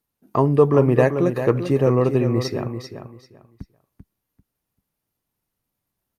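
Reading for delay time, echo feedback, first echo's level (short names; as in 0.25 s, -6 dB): 0.391 s, 22%, -9.0 dB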